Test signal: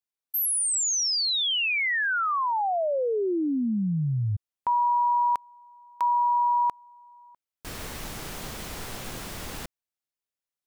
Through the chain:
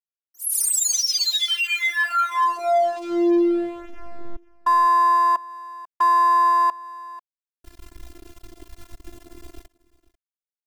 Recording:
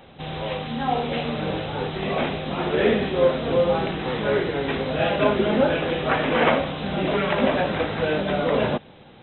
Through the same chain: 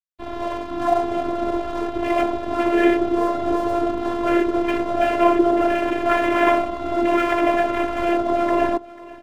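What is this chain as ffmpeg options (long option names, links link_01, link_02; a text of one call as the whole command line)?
ffmpeg -i in.wav -filter_complex "[0:a]afwtdn=0.0355,asplit=2[link_01][link_02];[link_02]alimiter=limit=-18.5dB:level=0:latency=1:release=61,volume=0dB[link_03];[link_01][link_03]amix=inputs=2:normalize=0,aeval=exprs='sgn(val(0))*max(abs(val(0))-0.0188,0)':channel_layout=same,afftfilt=real='hypot(re,im)*cos(PI*b)':imag='0':win_size=512:overlap=0.75,aecho=1:1:492:0.0944,adynamicequalizer=threshold=0.0224:dfrequency=1700:dqfactor=0.7:tfrequency=1700:tqfactor=0.7:attack=5:release=100:ratio=0.375:range=2:mode=cutabove:tftype=highshelf,volume=5dB" out.wav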